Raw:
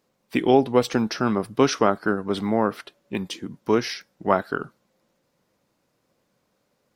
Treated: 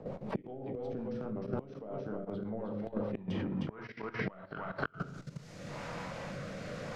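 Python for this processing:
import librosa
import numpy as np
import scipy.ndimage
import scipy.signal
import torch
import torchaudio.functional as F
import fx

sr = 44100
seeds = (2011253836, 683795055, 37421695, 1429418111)

p1 = fx.high_shelf(x, sr, hz=6600.0, db=9.0)
p2 = 10.0 ** (-18.5 / 20.0) * np.tanh(p1 / 10.0 ** (-18.5 / 20.0))
p3 = p1 + F.gain(torch.from_numpy(p2), -4.0).numpy()
p4 = fx.peak_eq(p3, sr, hz=340.0, db=-11.5, octaves=0.97)
p5 = fx.room_shoebox(p4, sr, seeds[0], volume_m3=120.0, walls='mixed', distance_m=0.59)
p6 = fx.filter_sweep_lowpass(p5, sr, from_hz=540.0, to_hz=6500.0, start_s=2.82, end_s=5.12, q=1.3)
p7 = p6 + fx.echo_single(p6, sr, ms=308, db=-7.0, dry=0)
p8 = fx.gate_flip(p7, sr, shuts_db=-17.0, range_db=-29)
p9 = fx.level_steps(p8, sr, step_db=14)
p10 = fx.rotary_switch(p9, sr, hz=5.5, then_hz=0.85, switch_at_s=3.51)
p11 = fx.band_squash(p10, sr, depth_pct=100)
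y = F.gain(torch.from_numpy(p11), 11.0).numpy()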